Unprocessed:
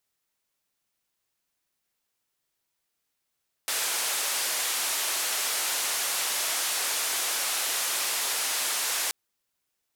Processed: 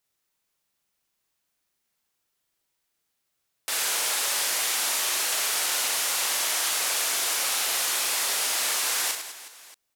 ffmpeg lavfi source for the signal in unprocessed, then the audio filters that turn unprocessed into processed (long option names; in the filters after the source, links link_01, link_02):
-f lavfi -i "anoisesrc=color=white:duration=5.43:sample_rate=44100:seed=1,highpass=frequency=540,lowpass=frequency=12000,volume=-20.8dB"
-af "aecho=1:1:40|104|206.4|370.2|632.4:0.631|0.398|0.251|0.158|0.1"